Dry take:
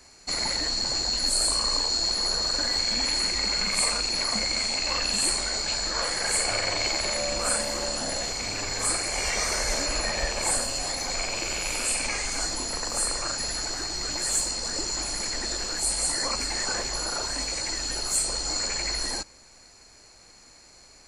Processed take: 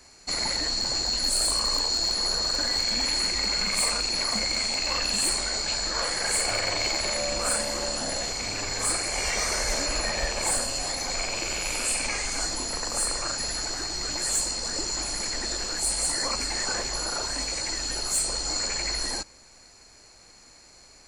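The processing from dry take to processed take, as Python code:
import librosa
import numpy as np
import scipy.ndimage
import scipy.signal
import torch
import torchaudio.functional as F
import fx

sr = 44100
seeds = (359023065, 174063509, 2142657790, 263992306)

y = np.clip(10.0 ** (18.0 / 20.0) * x, -1.0, 1.0) / 10.0 ** (18.0 / 20.0)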